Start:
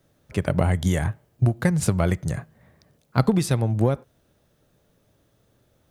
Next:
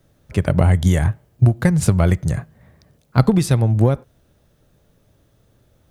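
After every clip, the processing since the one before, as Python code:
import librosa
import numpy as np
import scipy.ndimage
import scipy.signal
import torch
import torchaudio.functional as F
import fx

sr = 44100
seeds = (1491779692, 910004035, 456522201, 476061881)

y = fx.low_shelf(x, sr, hz=100.0, db=9.0)
y = F.gain(torch.from_numpy(y), 3.0).numpy()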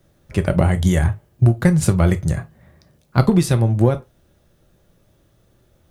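y = fx.rev_gated(x, sr, seeds[0], gate_ms=80, shape='falling', drr_db=8.0)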